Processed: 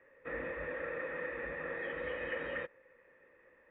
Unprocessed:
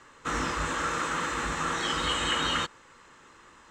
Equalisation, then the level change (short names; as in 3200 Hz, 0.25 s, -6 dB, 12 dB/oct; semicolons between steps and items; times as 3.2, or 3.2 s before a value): vocal tract filter e; +4.0 dB